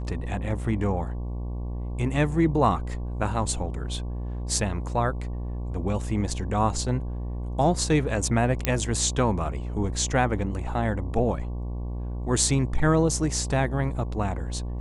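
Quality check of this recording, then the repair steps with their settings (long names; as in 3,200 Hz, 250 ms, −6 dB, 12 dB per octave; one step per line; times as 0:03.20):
mains buzz 60 Hz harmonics 19 −31 dBFS
0:08.65: click −7 dBFS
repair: click removal
hum removal 60 Hz, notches 19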